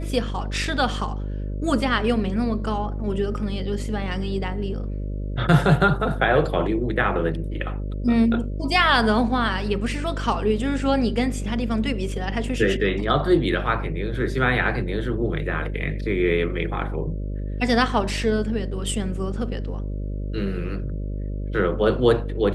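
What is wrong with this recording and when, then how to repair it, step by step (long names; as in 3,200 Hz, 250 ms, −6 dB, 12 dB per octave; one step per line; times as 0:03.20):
mains buzz 50 Hz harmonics 12 −28 dBFS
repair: hum removal 50 Hz, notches 12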